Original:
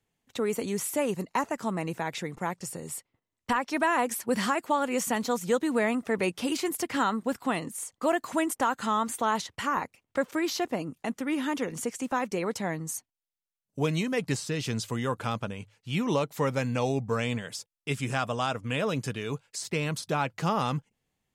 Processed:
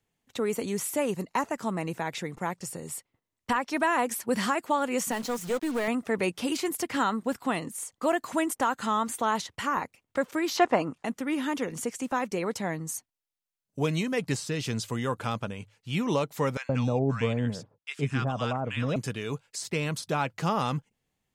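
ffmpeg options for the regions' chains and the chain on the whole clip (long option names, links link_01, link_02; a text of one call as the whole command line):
ffmpeg -i in.wav -filter_complex "[0:a]asettb=1/sr,asplit=3[link_01][link_02][link_03];[link_01]atrim=end=5.114[link_04];[link_02]atrim=start=5.11:end=5.88,asetpts=PTS-STARTPTS,afade=type=in:duration=0.004:curve=qsin,afade=type=out:start_time=0.766:duration=0.004:curve=qsin,aeval=exprs='(tanh(12.6*val(0)+0.2)-tanh(0.2))/12.6':channel_layout=same,bandreject=frequency=200:width=6.3,acrusher=bits=6:mix=0:aa=0.5[link_05];[link_03]atrim=start=5.876[link_06];[link_04][link_05]acrossfade=duration=0.004:curve1=hsin:curve2=qsin[link_07];[link_07][link_06]acrossfade=duration=0.004:curve1=qsin:curve2=hsin,asettb=1/sr,asplit=3[link_08][link_09][link_10];[link_08]atrim=end=10.574[link_11];[link_09]atrim=start=10.57:end=11.04,asetpts=PTS-STARTPTS,afade=type=in:duration=0.004:curve=qsin,afade=type=out:start_time=0.466:duration=0.004:curve=qsin,lowpass=frequency=9300:width=0.5412,lowpass=frequency=9300:width=1.3066,equalizer=frequency=1100:width_type=o:width=2.5:gain=12.5[link_12];[link_10]atrim=start=11.036[link_13];[link_11][link_12]acrossfade=duration=0.004:curve1=hsin:curve2=qsin[link_14];[link_14][link_13]acrossfade=duration=0.004:curve1=qsin:curve2=hsin,asettb=1/sr,asplit=3[link_15][link_16][link_17];[link_15]atrim=end=16.574[link_18];[link_16]atrim=start=16.57:end=18.96,asetpts=PTS-STARTPTS,afade=type=in:duration=0.004:curve=qsin,afade=type=out:start_time=2.386:duration=0.004:curve=qsin,highpass=frequency=180:poles=1,aemphasis=mode=reproduction:type=bsi,acrossover=split=1100[link_19][link_20];[link_19]adelay=120[link_21];[link_21][link_20]amix=inputs=2:normalize=0,atrim=end_sample=105399[link_22];[link_17]atrim=start=18.956[link_23];[link_18][link_22]acrossfade=duration=0.004:curve1=hsin:curve2=qsin[link_24];[link_24][link_23]acrossfade=duration=0.004:curve1=qsin:curve2=hsin" out.wav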